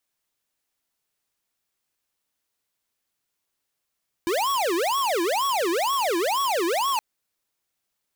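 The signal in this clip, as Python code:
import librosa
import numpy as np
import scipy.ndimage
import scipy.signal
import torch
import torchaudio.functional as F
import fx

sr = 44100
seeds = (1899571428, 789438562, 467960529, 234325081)

y = fx.siren(sr, length_s=2.72, kind='wail', low_hz=332.0, high_hz=1120.0, per_s=2.1, wave='square', level_db=-23.5)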